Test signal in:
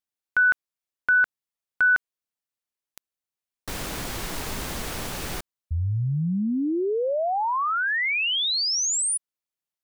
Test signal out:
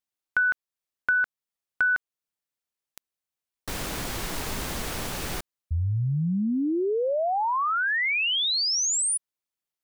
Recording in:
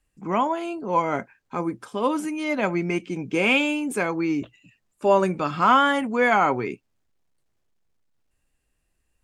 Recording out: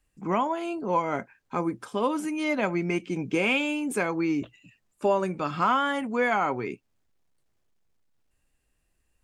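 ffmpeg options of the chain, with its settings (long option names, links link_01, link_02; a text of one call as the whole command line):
ffmpeg -i in.wav -af "acompressor=threshold=-23dB:ratio=2.5:attack=44:release=734:knee=1:detection=rms" out.wav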